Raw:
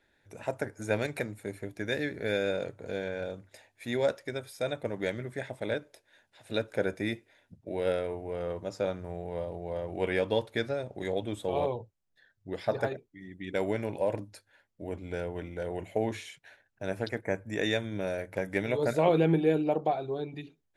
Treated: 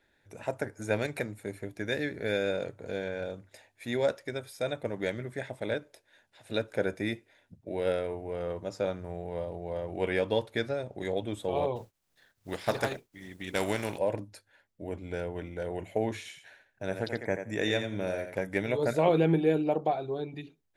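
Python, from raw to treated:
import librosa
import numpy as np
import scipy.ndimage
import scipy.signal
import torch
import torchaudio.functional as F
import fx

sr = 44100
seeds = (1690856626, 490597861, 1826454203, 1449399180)

y = fx.spec_flatten(x, sr, power=0.63, at=(11.75, 13.97), fade=0.02)
y = fx.echo_thinned(y, sr, ms=86, feedback_pct=16, hz=160.0, wet_db=-8, at=(16.17, 18.45))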